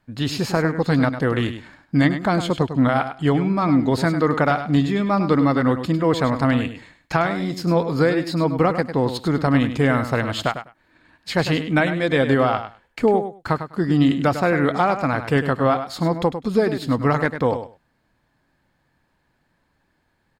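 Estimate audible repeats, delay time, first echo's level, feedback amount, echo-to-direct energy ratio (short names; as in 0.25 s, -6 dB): 2, 0.101 s, -10.0 dB, 15%, -10.0 dB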